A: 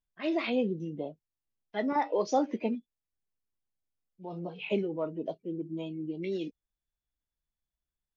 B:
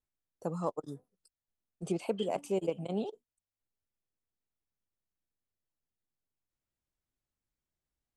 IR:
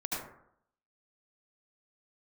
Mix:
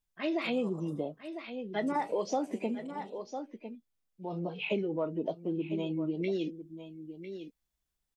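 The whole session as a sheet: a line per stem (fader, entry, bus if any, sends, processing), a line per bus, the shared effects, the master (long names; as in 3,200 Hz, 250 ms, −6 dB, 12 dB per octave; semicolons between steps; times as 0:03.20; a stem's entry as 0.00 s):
+2.5 dB, 0.00 s, no send, echo send −14 dB, speech leveller 2 s
−9.5 dB, 0.00 s, send −12 dB, no echo send, high-shelf EQ 2,500 Hz +11.5 dB; automatic ducking −12 dB, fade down 1.80 s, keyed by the first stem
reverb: on, RT60 0.70 s, pre-delay 68 ms
echo: single-tap delay 1,001 ms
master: downward compressor 2.5 to 1, threshold −30 dBFS, peak gain reduction 7.5 dB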